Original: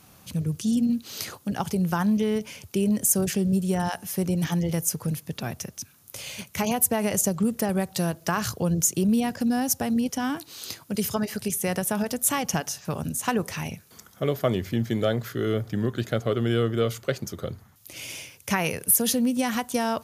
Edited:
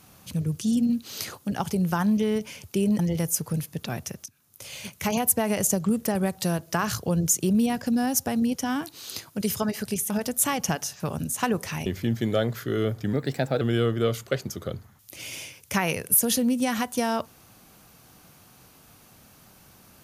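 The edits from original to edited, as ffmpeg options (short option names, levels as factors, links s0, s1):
-filter_complex "[0:a]asplit=7[s0][s1][s2][s3][s4][s5][s6];[s0]atrim=end=2.992[s7];[s1]atrim=start=4.528:end=5.8,asetpts=PTS-STARTPTS,afade=t=out:st=1.268:d=0.004:c=hsin:silence=0.16788[s8];[s2]atrim=start=5.8:end=11.642,asetpts=PTS-STARTPTS,afade=t=in:d=0.66:silence=0.16788[s9];[s3]atrim=start=11.948:end=13.712[s10];[s4]atrim=start=14.548:end=15.824[s11];[s5]atrim=start=15.82:end=16.38,asetpts=PTS-STARTPTS,asetrate=51156,aresample=44100[s12];[s6]atrim=start=16.376[s13];[s8][s9]concat=n=2:v=0:a=1[s14];[s7][s14]acrossfade=d=0.004:c1=hsin:c2=hsin[s15];[s15][s10]acrossfade=d=0.004:c1=hsin:c2=hsin[s16];[s16][s11]acrossfade=d=0.004:c1=hsin:c2=hsin[s17];[s17][s12]acrossfade=d=0.004:c1=hsin:c2=hsin[s18];[s18][s13]acrossfade=d=0.004:c1=hsin:c2=hsin"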